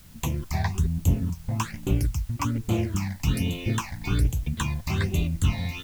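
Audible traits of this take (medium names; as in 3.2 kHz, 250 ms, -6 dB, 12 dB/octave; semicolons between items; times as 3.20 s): phasing stages 8, 1.2 Hz, lowest notch 370–1600 Hz; a quantiser's noise floor 10-bit, dither triangular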